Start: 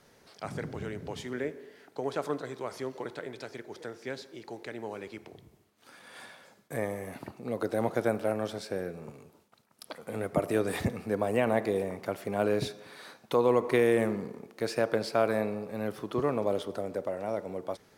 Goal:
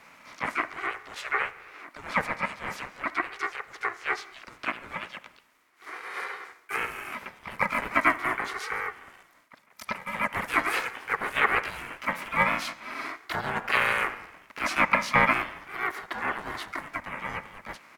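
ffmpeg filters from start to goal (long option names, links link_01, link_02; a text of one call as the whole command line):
ffmpeg -i in.wav -filter_complex "[0:a]highpass=frequency=1500:width_type=q:width=9,asplit=4[link_01][link_02][link_03][link_04];[link_02]asetrate=22050,aresample=44100,atempo=2,volume=-5dB[link_05];[link_03]asetrate=33038,aresample=44100,atempo=1.33484,volume=-5dB[link_06];[link_04]asetrate=52444,aresample=44100,atempo=0.840896,volume=-1dB[link_07];[link_01][link_05][link_06][link_07]amix=inputs=4:normalize=0,aeval=exprs='val(0)*sin(2*PI*440*n/s+440*0.25/0.4*sin(2*PI*0.4*n/s))':channel_layout=same,volume=2dB" out.wav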